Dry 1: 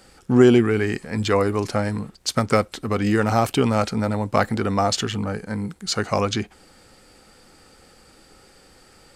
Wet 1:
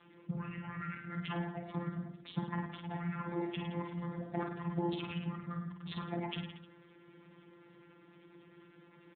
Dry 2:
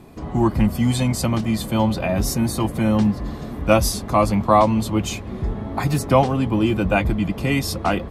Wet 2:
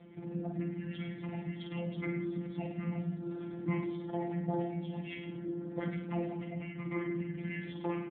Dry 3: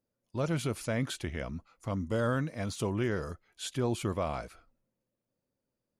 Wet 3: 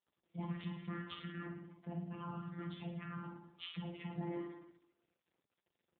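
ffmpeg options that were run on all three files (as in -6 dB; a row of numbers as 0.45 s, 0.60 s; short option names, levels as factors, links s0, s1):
-filter_complex "[0:a]equalizer=f=75:w=2.8:g=4,acompressor=threshold=0.0251:ratio=2.5,afreqshift=-350,afftfilt=real='hypot(re,im)*cos(PI*b)':imag='0':win_size=1024:overlap=0.75,acrossover=split=560[s0][s1];[s0]aeval=exprs='val(0)*(1-0.5/2+0.5/2*cos(2*PI*10*n/s))':c=same[s2];[s1]aeval=exprs='val(0)*(1-0.5/2-0.5/2*cos(2*PI*10*n/s))':c=same[s3];[s2][s3]amix=inputs=2:normalize=0,asplit=2[s4][s5];[s5]aecho=0:1:50|105|165.5|232|305.3:0.631|0.398|0.251|0.158|0.1[s6];[s4][s6]amix=inputs=2:normalize=0" -ar 8000 -c:a libopencore_amrnb -b:a 7400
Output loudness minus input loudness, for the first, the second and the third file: -18.5 LU, -18.0 LU, -11.5 LU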